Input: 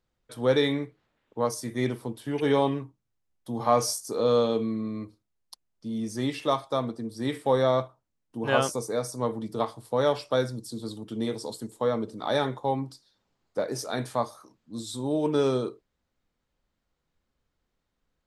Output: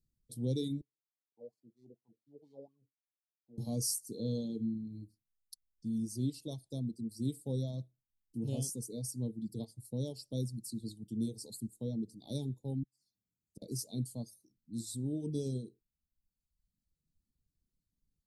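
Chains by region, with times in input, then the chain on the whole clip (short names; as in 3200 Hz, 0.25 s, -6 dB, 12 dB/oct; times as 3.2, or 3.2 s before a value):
0.81–3.58 median filter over 15 samples + wah 4.3 Hz 480–1300 Hz, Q 7.2
12.83–13.62 bell 4300 Hz -8 dB 0.65 oct + flipped gate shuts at -35 dBFS, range -32 dB + HPF 65 Hz
whole clip: reverb removal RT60 1.1 s; Chebyshev band-stop 190–9400 Hz, order 2; bell 4300 Hz +10.5 dB 0.61 oct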